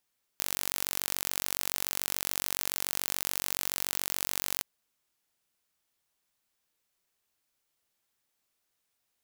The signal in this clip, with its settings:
impulse train 47 per second, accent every 0, −4 dBFS 4.22 s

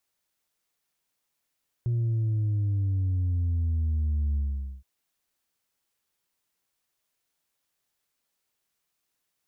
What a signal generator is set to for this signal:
bass drop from 120 Hz, over 2.97 s, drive 2 dB, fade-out 0.47 s, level −23.5 dB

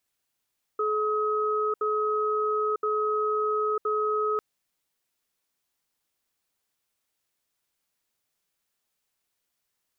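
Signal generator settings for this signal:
tone pair in a cadence 427 Hz, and 1,270 Hz, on 0.95 s, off 0.07 s, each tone −26 dBFS 3.60 s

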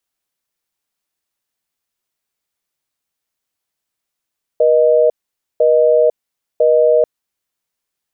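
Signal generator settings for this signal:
call progress tone busy tone, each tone −11 dBFS 2.44 s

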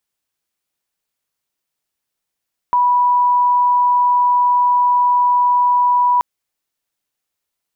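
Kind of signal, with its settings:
tone sine 981 Hz −10.5 dBFS 3.48 s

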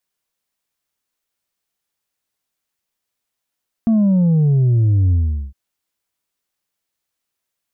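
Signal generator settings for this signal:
bass drop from 230 Hz, over 1.66 s, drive 3 dB, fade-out 0.41 s, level −11.5 dB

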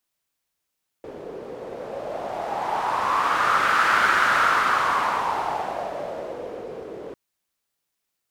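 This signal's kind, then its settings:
wind from filtered noise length 6.10 s, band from 440 Hz, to 1,400 Hz, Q 4.2, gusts 1, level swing 17 dB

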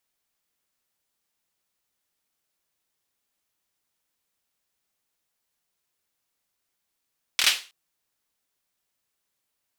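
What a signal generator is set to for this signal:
synth clap length 0.32 s, apart 25 ms, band 3,000 Hz, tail 0.33 s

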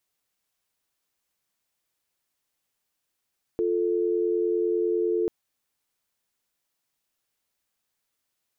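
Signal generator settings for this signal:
call progress tone dial tone, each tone −24.5 dBFS 1.69 s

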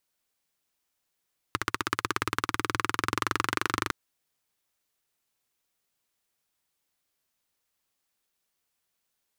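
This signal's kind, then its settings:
pulse-train model of a single-cylinder engine, changing speed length 2.36 s, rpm 1,800, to 3,000, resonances 110/320/1,200 Hz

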